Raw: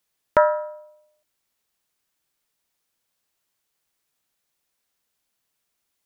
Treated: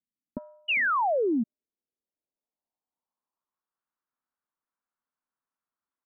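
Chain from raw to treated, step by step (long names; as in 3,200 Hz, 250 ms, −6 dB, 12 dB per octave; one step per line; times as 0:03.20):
graphic EQ with 15 bands 100 Hz −5 dB, 250 Hz +8 dB, 1,000 Hz +6 dB
far-end echo of a speakerphone 400 ms, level −20 dB
low-pass filter sweep 240 Hz → 1,400 Hz, 0:00.76–0:03.82
sound drawn into the spectrogram fall, 0:00.68–0:01.44, 210–3,000 Hz −19 dBFS
expander for the loud parts 2.5 to 1, over −26 dBFS
level −5.5 dB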